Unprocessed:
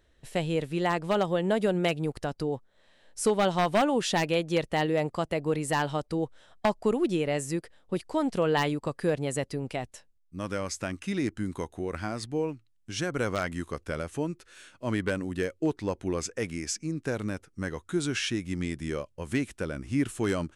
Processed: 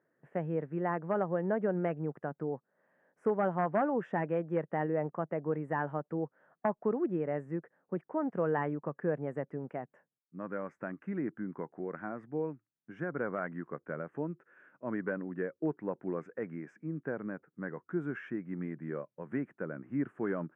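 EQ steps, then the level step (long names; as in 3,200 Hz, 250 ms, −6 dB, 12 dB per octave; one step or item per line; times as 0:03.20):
elliptic band-pass filter 150–1,700 Hz, stop band 40 dB
−5.0 dB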